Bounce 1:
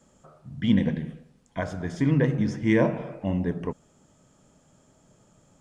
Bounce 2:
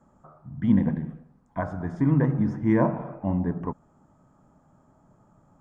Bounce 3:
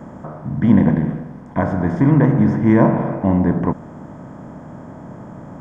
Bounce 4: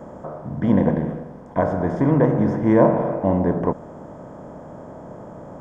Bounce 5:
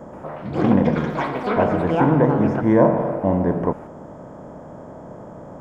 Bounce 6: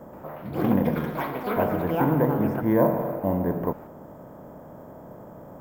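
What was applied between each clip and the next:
drawn EQ curve 310 Hz 0 dB, 480 Hz −6 dB, 820 Hz +4 dB, 1,200 Hz +3 dB, 3,000 Hz −19 dB, 6,600 Hz −17 dB; level +1 dB
compressor on every frequency bin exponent 0.6; level +6 dB
graphic EQ with 10 bands 125 Hz −4 dB, 250 Hz −4 dB, 500 Hz +7 dB, 2,000 Hz −4 dB; level −2 dB
delay with pitch and tempo change per echo 128 ms, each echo +7 semitones, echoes 3, each echo −6 dB
bad sample-rate conversion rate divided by 3×, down none, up hold; level −5.5 dB

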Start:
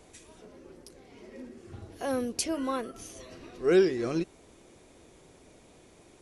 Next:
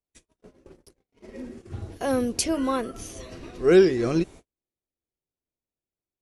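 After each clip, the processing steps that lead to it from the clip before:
noise gate −48 dBFS, range −47 dB
low-shelf EQ 130 Hz +8 dB
level +5 dB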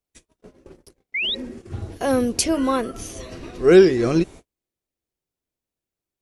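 sound drawn into the spectrogram rise, 0:01.14–0:01.35, 2,000–4,000 Hz −28 dBFS
level +4.5 dB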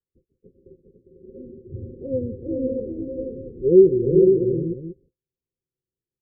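Chebyshev low-pass with heavy ripple 540 Hz, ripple 9 dB
on a send: multi-tap delay 174/404/497/685 ms −15.5/−5/−4/−11 dB

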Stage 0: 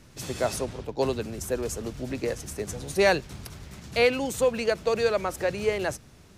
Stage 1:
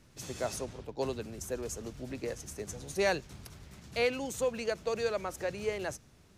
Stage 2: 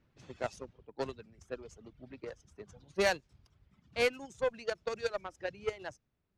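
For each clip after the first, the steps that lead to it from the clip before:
dynamic equaliser 6,400 Hz, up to +5 dB, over −51 dBFS, Q 3.4; level −8 dB
reverb reduction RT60 1.7 s; harmonic generator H 7 −20 dB, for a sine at −16 dBFS; low-pass that shuts in the quiet parts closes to 2,800 Hz, open at −27.5 dBFS; level +1 dB

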